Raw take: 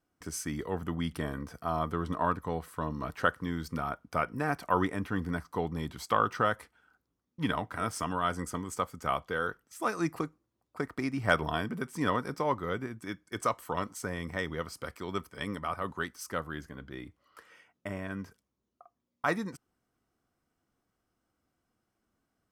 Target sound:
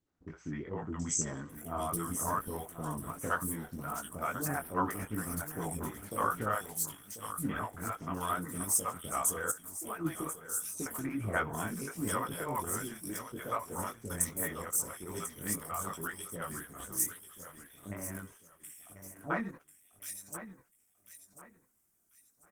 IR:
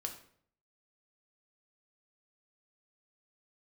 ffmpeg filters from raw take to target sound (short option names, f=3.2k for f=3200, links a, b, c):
-filter_complex "[0:a]asplit=2[a][b];[b]aecho=0:1:1042|2084|3126:0.266|0.0798|0.0239[c];[a][c]amix=inputs=2:normalize=0,aexciter=amount=13.9:drive=2.3:freq=6.6k,flanger=delay=17.5:depth=4.9:speed=2.5,acrossover=split=510|2900[d][e][f];[e]adelay=60[g];[f]adelay=780[h];[d][g][h]amix=inputs=3:normalize=0,asplit=3[i][j][k];[i]afade=t=out:st=9.5:d=0.02[l];[j]acompressor=threshold=-35dB:ratio=12,afade=t=in:st=9.5:d=0.02,afade=t=out:st=10.04:d=0.02[m];[k]afade=t=in:st=10.04:d=0.02[n];[l][m][n]amix=inputs=3:normalize=0" -ar 48000 -c:a libopus -b:a 16k